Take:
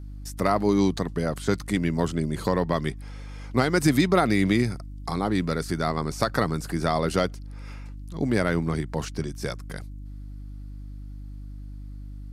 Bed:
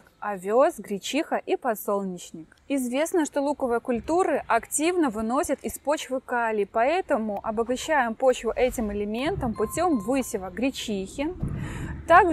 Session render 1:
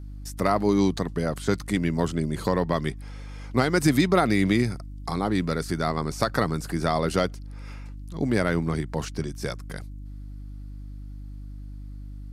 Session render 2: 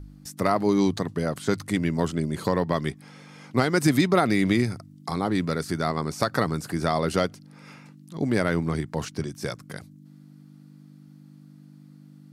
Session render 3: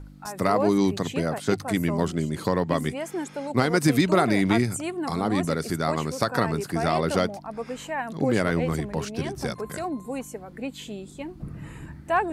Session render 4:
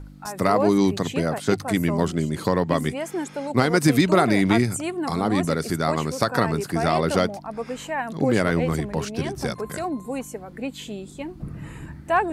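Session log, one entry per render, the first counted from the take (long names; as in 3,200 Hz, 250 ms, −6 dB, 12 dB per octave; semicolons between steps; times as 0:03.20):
no processing that can be heard
hum removal 50 Hz, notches 2
mix in bed −7.5 dB
level +2.5 dB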